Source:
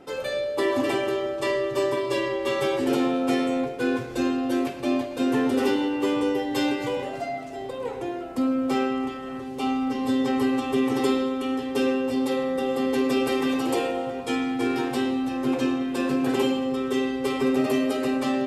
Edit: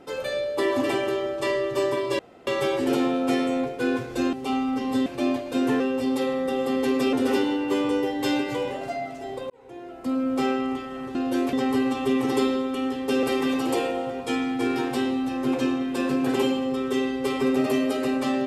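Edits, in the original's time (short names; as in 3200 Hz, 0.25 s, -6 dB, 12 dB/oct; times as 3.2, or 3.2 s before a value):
2.19–2.47 room tone
4.33–4.71 swap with 9.47–10.2
7.82–8.63 fade in
11.9–13.23 move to 5.45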